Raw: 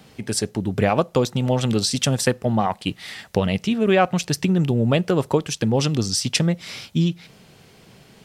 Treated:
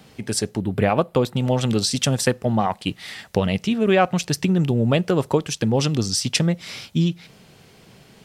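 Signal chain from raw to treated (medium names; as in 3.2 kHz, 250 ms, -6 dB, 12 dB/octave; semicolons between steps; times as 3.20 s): 0.60–1.37 s: peaking EQ 6.1 kHz -11.5 dB 0.64 oct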